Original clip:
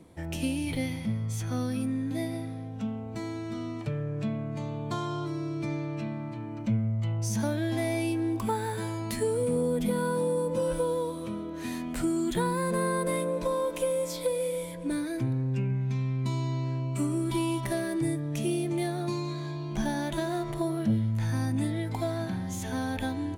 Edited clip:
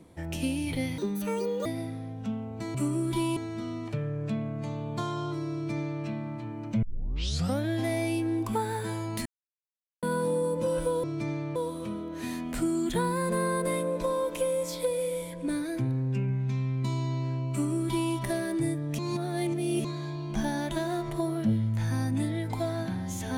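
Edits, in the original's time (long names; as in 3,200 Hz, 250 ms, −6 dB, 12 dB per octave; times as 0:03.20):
0:00.98–0:02.21: play speed 182%
0:05.46–0:05.98: duplicate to 0:10.97
0:06.76: tape start 0.77 s
0:09.19–0:09.96: silence
0:16.93–0:17.55: duplicate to 0:03.30
0:18.40–0:19.26: reverse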